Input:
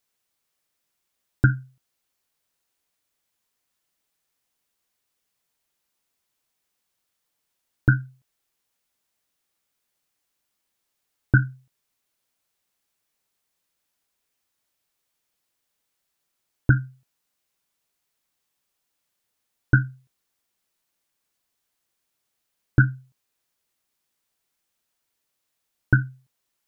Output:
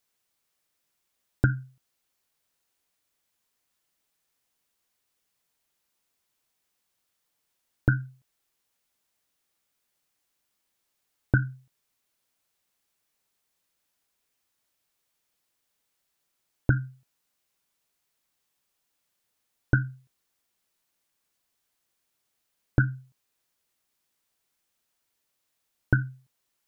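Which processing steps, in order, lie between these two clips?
compressor, threshold -17 dBFS, peak gain reduction 6.5 dB

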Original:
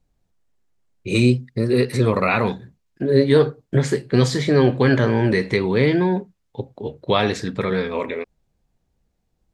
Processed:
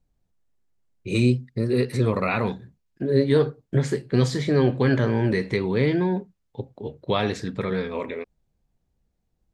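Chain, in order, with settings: low shelf 340 Hz +3.5 dB; gain -6 dB

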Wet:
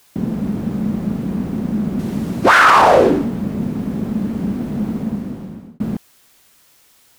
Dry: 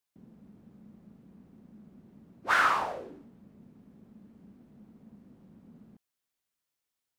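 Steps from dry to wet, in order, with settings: 1.99–2.46 bell 7300 Hz +7.5 dB 2.8 oct; 4.91–5.8 fade out linear; maximiser +34.5 dB; gain -1 dB

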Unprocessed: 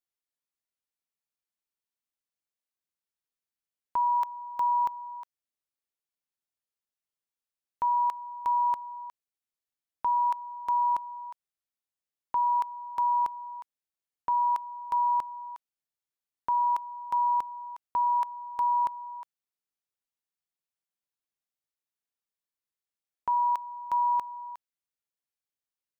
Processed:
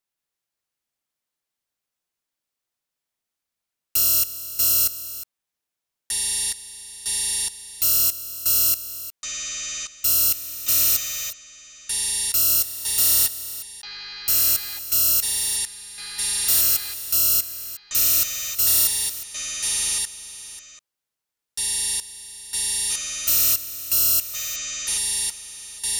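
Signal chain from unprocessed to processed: FFT order left unsorted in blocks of 256 samples; echoes that change speed 0.179 s, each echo -7 st, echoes 3, each echo -6 dB; gain +6.5 dB

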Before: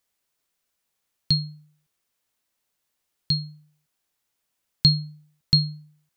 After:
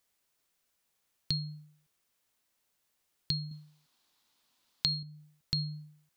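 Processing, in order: limiter -14 dBFS, peak gain reduction 9 dB; 3.51–5.03 graphic EQ 250/1000/4000 Hz +8/+8/+11 dB; compressor 8:1, threshold -29 dBFS, peak gain reduction 18 dB

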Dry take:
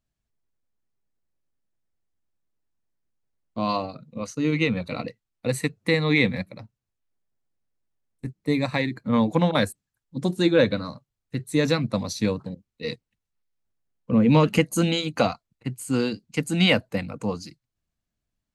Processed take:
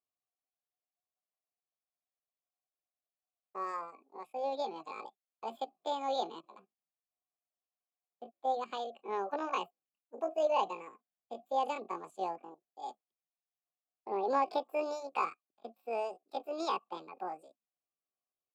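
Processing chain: pitch shift +10 st; vowel filter a

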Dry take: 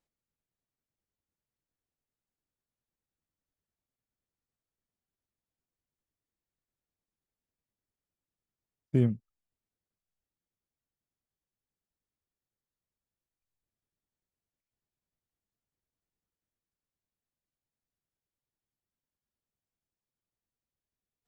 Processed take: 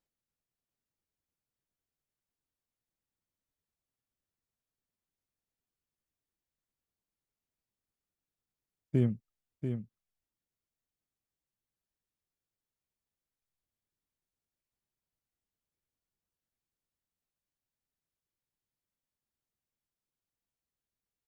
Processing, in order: echo 0.689 s -7.5 dB; gain -2.5 dB

